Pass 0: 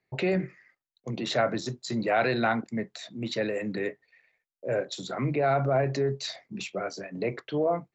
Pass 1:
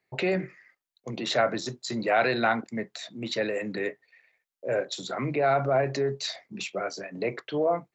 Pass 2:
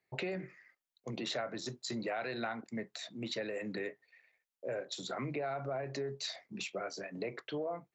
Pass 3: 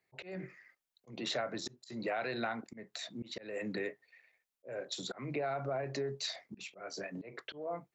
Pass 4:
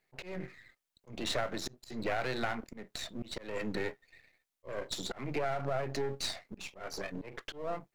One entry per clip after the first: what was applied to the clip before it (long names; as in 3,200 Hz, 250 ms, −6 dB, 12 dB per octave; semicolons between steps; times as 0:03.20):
low-shelf EQ 250 Hz −8 dB; level +2.5 dB
downward compressor 5 to 1, threshold −30 dBFS, peak gain reduction 11 dB; level −5 dB
volume swells 213 ms; level +1.5 dB
gain on one half-wave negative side −12 dB; level +5.5 dB